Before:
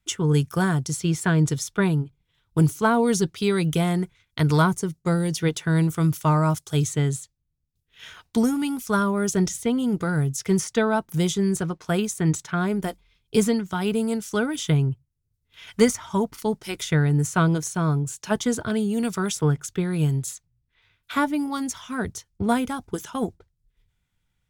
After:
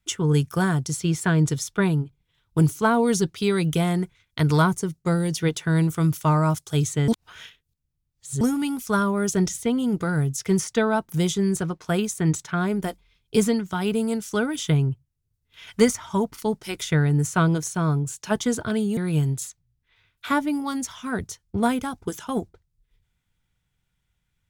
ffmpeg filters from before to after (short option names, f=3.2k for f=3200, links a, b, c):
-filter_complex "[0:a]asplit=4[a][b][c][d];[a]atrim=end=7.082[e];[b]atrim=start=7.078:end=8.412,asetpts=PTS-STARTPTS,areverse[f];[c]atrim=start=8.408:end=18.972[g];[d]atrim=start=19.828[h];[e][f]acrossfade=d=0.004:c1=hsin:c2=hsin[i];[i][g]acrossfade=d=0.004:c1=hsin:c2=hsin[j];[j][h]acrossfade=d=0.004:c1=hsin:c2=hsin"